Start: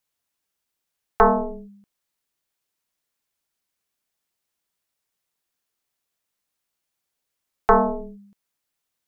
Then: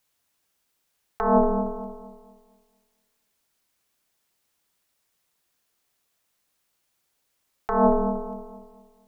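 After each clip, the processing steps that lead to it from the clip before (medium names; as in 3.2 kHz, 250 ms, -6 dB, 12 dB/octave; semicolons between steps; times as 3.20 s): compressor with a negative ratio -22 dBFS, ratio -1; bucket-brigade echo 231 ms, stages 2048, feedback 37%, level -9.5 dB; trim +2.5 dB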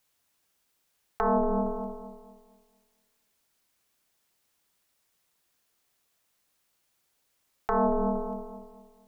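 compression 5:1, threshold -23 dBFS, peak gain reduction 7.5 dB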